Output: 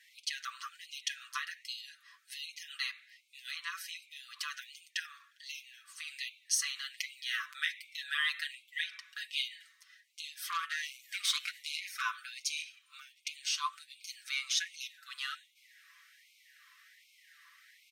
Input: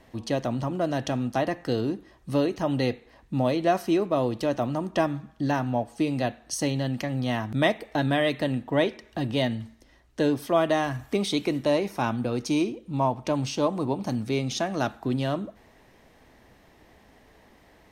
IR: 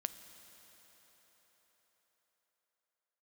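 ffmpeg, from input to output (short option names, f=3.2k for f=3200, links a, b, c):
-filter_complex "[0:a]aecho=1:1:6:0.8,acompressor=threshold=-22dB:ratio=5,asettb=1/sr,asplit=3[a][b][c];[a]atrim=end=10.484[d];[b]atrim=start=10.48:end=12.02,asetpts=PTS-STARTPTS,afade=t=in:d=0.004:c=qsin,afade=t=out:st=1.536:d=0.004:c=qsin,aeval=exprs='0.188*(cos(1*acos(clip(val(0)/0.188,-1,1)))-cos(1*PI/2))+0.0168*(cos(6*acos(clip(val(0)/0.188,-1,1)))-cos(6*PI/2))':c=same[e];[c]atrim=start=12.016[f];[d][e]acrossfade=d=0.004:c1=hsin:c2=qsin[g];[g][f]acrossfade=d=0.004:c1=qsin:c2=hsin,afftfilt=real='re*gte(b*sr/1024,1000*pow(2100/1000,0.5+0.5*sin(2*PI*1.3*pts/sr)))':imag='im*gte(b*sr/1024,1000*pow(2100/1000,0.5+0.5*sin(2*PI*1.3*pts/sr)))':win_size=1024:overlap=0.75"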